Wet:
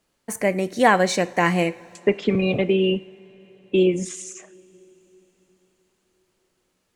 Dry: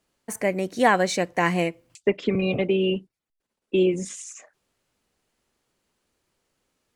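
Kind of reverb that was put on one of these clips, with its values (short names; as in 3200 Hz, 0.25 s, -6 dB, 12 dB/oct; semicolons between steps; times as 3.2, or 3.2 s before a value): two-slope reverb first 0.52 s, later 4.9 s, from -18 dB, DRR 15 dB; gain +2.5 dB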